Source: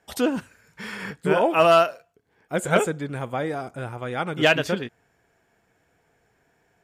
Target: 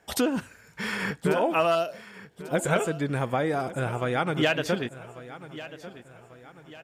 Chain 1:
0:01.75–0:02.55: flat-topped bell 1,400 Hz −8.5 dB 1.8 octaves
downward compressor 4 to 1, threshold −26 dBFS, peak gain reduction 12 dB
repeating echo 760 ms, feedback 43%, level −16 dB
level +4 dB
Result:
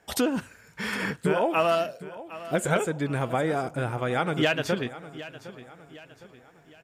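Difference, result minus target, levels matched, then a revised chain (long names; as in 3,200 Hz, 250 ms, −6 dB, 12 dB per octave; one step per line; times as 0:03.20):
echo 383 ms early
0:01.75–0:02.55: flat-topped bell 1,400 Hz −8.5 dB 1.8 octaves
downward compressor 4 to 1, threshold −26 dBFS, peak gain reduction 12 dB
repeating echo 1,143 ms, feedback 43%, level −16 dB
level +4 dB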